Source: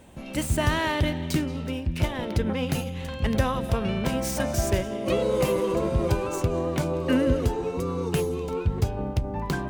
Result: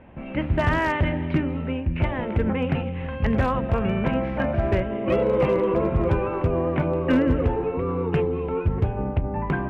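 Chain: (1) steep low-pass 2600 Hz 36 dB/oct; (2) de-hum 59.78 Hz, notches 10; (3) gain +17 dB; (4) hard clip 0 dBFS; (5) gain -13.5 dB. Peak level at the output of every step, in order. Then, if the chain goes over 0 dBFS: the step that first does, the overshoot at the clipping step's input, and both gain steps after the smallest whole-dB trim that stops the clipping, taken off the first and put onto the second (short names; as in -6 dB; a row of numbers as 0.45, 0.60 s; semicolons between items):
-9.0, -9.5, +7.5, 0.0, -13.5 dBFS; step 3, 7.5 dB; step 3 +9 dB, step 5 -5.5 dB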